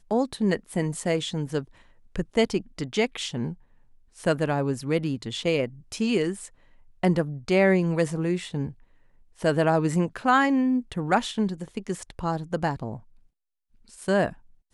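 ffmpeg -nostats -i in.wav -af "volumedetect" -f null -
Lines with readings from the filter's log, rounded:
mean_volume: -26.5 dB
max_volume: -8.6 dB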